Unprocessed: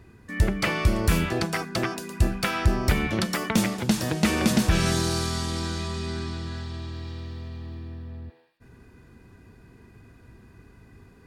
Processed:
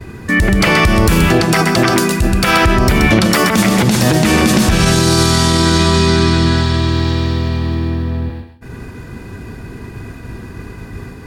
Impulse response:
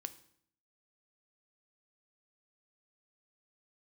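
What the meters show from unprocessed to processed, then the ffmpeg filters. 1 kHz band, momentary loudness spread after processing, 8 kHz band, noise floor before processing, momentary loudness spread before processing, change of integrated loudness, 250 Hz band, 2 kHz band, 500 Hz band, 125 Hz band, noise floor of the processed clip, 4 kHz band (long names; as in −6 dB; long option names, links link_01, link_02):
+15.5 dB, 20 LU, +13.5 dB, −53 dBFS, 15 LU, +13.5 dB, +14.0 dB, +15.0 dB, +15.0 dB, +13.5 dB, −33 dBFS, +14.5 dB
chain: -filter_complex "[0:a]agate=range=-33dB:threshold=-49dB:ratio=3:detection=peak,acompressor=threshold=-27dB:ratio=6,asplit=2[link_01][link_02];[1:a]atrim=start_sample=2205,adelay=128[link_03];[link_02][link_03]afir=irnorm=-1:irlink=0,volume=-5dB[link_04];[link_01][link_04]amix=inputs=2:normalize=0,alimiter=level_in=22.5dB:limit=-1dB:release=50:level=0:latency=1,volume=-1dB" -ar 48000 -c:a libopus -b:a 128k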